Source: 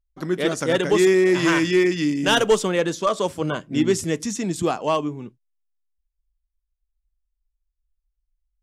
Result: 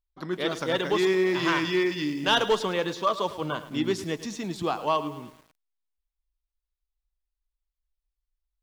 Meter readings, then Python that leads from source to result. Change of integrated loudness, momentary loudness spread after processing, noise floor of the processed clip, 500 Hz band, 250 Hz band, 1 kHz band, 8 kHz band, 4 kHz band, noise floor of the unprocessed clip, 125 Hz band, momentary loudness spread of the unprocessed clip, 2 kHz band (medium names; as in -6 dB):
-6.0 dB, 10 LU, under -85 dBFS, -6.5 dB, -7.5 dB, -1.5 dB, -11.5 dB, -2.5 dB, -80 dBFS, -7.5 dB, 9 LU, -4.5 dB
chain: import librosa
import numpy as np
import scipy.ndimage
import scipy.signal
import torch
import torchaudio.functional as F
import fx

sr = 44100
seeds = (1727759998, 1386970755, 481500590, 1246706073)

y = fx.graphic_eq(x, sr, hz=(1000, 4000, 8000), db=(7, 9, -9))
y = fx.echo_crushed(y, sr, ms=107, feedback_pct=55, bits=6, wet_db=-14.0)
y = y * 10.0 ** (-8.0 / 20.0)